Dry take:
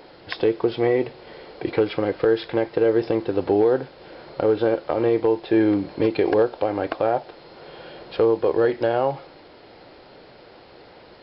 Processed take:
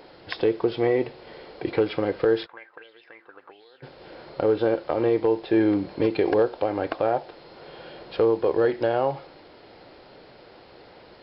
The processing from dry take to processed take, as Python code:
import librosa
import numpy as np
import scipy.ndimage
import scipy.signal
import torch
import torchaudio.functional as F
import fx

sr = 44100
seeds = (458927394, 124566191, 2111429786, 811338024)

y = x + 10.0 ** (-22.5 / 20.0) * np.pad(x, (int(71 * sr / 1000.0), 0))[:len(x)]
y = fx.auto_wah(y, sr, base_hz=450.0, top_hz=3900.0, q=6.6, full_db=-13.5, direction='up', at=(2.45, 3.82), fade=0.02)
y = F.gain(torch.from_numpy(y), -2.0).numpy()